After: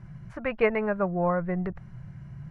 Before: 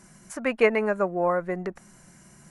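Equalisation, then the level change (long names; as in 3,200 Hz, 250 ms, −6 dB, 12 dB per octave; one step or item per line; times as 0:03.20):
high-frequency loss of the air 350 metres
low shelf with overshoot 180 Hz +13 dB, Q 3
parametric band 310 Hz +7 dB 0.2 octaves
0.0 dB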